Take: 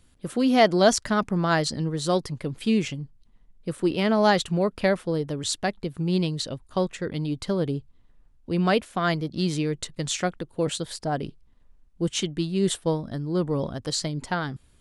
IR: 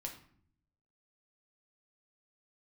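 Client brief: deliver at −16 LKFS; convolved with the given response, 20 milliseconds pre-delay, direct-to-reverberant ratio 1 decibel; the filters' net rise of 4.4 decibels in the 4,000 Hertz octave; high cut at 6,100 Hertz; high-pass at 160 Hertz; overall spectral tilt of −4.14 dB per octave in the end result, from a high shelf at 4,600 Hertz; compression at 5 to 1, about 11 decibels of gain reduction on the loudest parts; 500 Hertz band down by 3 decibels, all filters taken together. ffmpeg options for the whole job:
-filter_complex "[0:a]highpass=160,lowpass=6100,equalizer=frequency=500:width_type=o:gain=-4,equalizer=frequency=4000:width_type=o:gain=8.5,highshelf=frequency=4600:gain=-5,acompressor=threshold=-27dB:ratio=5,asplit=2[link_01][link_02];[1:a]atrim=start_sample=2205,adelay=20[link_03];[link_02][link_03]afir=irnorm=-1:irlink=0,volume=1.5dB[link_04];[link_01][link_04]amix=inputs=2:normalize=0,volume=13dB"

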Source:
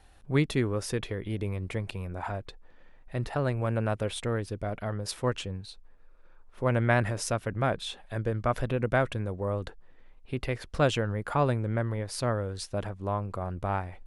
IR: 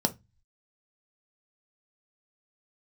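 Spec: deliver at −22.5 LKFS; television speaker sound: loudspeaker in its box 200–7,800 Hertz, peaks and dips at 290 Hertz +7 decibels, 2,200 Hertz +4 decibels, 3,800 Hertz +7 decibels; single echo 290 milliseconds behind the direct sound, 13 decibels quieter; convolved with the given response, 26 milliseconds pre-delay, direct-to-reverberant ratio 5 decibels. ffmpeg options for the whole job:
-filter_complex "[0:a]aecho=1:1:290:0.224,asplit=2[link_01][link_02];[1:a]atrim=start_sample=2205,adelay=26[link_03];[link_02][link_03]afir=irnorm=-1:irlink=0,volume=-13.5dB[link_04];[link_01][link_04]amix=inputs=2:normalize=0,highpass=frequency=200:width=0.5412,highpass=frequency=200:width=1.3066,equalizer=frequency=290:width_type=q:width=4:gain=7,equalizer=frequency=2200:width_type=q:width=4:gain=4,equalizer=frequency=3800:width_type=q:width=4:gain=7,lowpass=frequency=7800:width=0.5412,lowpass=frequency=7800:width=1.3066,volume=5.5dB"

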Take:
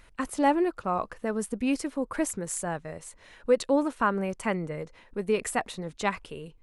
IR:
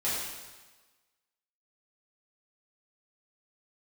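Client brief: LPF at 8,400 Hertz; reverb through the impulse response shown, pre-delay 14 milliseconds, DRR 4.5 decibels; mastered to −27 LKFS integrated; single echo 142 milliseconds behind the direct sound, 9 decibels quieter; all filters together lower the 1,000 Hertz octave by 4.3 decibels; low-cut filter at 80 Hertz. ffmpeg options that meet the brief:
-filter_complex "[0:a]highpass=80,lowpass=8400,equalizer=frequency=1000:width_type=o:gain=-5.5,aecho=1:1:142:0.355,asplit=2[link_01][link_02];[1:a]atrim=start_sample=2205,adelay=14[link_03];[link_02][link_03]afir=irnorm=-1:irlink=0,volume=-12.5dB[link_04];[link_01][link_04]amix=inputs=2:normalize=0,volume=1dB"

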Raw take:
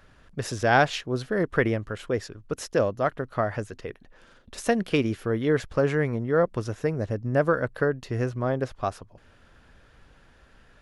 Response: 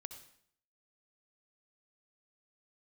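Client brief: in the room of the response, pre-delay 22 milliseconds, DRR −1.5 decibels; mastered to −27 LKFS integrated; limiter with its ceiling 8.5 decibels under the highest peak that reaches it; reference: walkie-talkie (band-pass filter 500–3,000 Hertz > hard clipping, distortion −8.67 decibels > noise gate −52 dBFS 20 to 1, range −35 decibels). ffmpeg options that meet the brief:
-filter_complex "[0:a]alimiter=limit=-15.5dB:level=0:latency=1,asplit=2[link_01][link_02];[1:a]atrim=start_sample=2205,adelay=22[link_03];[link_02][link_03]afir=irnorm=-1:irlink=0,volume=6dB[link_04];[link_01][link_04]amix=inputs=2:normalize=0,highpass=500,lowpass=3000,asoftclip=type=hard:threshold=-24.5dB,agate=range=-35dB:threshold=-52dB:ratio=20,volume=4.5dB"

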